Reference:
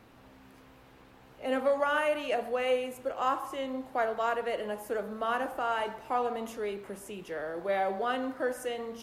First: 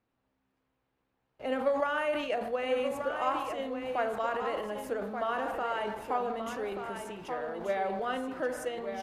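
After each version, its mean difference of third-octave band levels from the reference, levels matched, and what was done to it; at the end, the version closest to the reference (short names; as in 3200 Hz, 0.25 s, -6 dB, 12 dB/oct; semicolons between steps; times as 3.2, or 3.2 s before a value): 5.5 dB: gate with hold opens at -44 dBFS; high shelf 8900 Hz -11.5 dB; transient shaper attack +4 dB, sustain +8 dB; on a send: echo 1.181 s -7.5 dB; on the sum: gain -3.5 dB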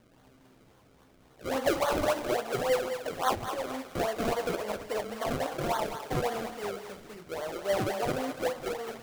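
9.0 dB: decimation with a swept rate 34×, swing 100% 3.6 Hz; on a send: thinning echo 0.209 s, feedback 38%, high-pass 490 Hz, level -7.5 dB; on the sum: flange 0.35 Hz, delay 5.4 ms, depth 7.8 ms, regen -43%; dynamic EQ 730 Hz, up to +6 dB, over -46 dBFS, Q 0.75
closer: first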